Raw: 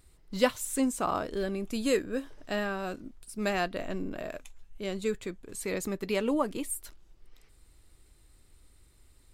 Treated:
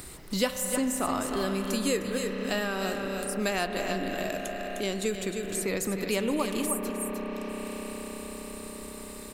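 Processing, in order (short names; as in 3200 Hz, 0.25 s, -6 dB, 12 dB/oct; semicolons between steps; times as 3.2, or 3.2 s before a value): high shelf 4200 Hz +9.5 dB; echo 0.306 s -9 dB; on a send at -6.5 dB: reverb RT60 5.6 s, pre-delay 31 ms; on the sum: three-band squash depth 70%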